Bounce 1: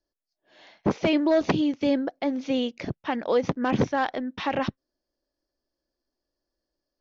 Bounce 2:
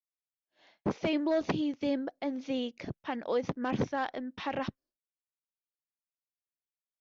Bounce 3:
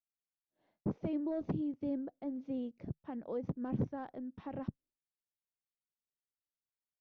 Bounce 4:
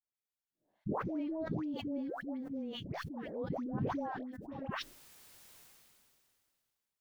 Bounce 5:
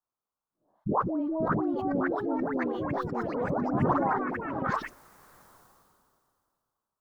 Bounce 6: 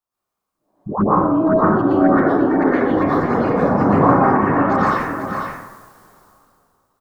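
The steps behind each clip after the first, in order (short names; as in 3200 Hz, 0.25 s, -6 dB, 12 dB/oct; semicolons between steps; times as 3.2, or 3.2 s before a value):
expander -48 dBFS; gain -7.5 dB
EQ curve 150 Hz 0 dB, 1300 Hz -16 dB, 2400 Hz -23 dB, 4500 Hz -26 dB
dispersion highs, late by 0.146 s, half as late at 800 Hz; sustainer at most 24 dB/s; gain -2.5 dB
resonant high shelf 1600 Hz -11.5 dB, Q 3; echoes that change speed 0.676 s, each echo +3 st, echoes 3; gain +6.5 dB
echo 0.496 s -6.5 dB; plate-style reverb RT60 0.99 s, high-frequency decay 0.5×, pre-delay 0.105 s, DRR -9.5 dB; gain +2 dB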